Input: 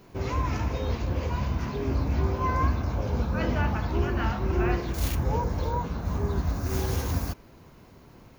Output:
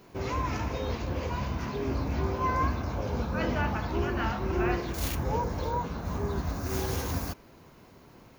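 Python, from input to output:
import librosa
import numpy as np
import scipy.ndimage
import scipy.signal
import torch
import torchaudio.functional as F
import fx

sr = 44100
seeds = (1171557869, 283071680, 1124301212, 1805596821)

y = fx.low_shelf(x, sr, hz=140.0, db=-7.0)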